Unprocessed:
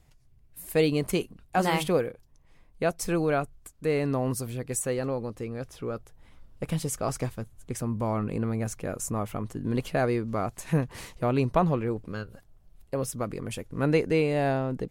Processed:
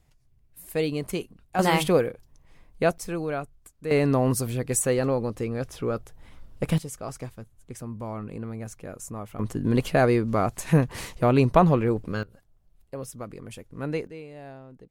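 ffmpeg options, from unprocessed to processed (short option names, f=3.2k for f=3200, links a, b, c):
-af "asetnsamples=n=441:p=0,asendcmd='1.59 volume volume 4dB;2.98 volume volume -4dB;3.91 volume volume 5.5dB;6.78 volume volume -6dB;9.39 volume volume 5.5dB;12.23 volume volume -6dB;14.07 volume volume -17dB',volume=-3dB"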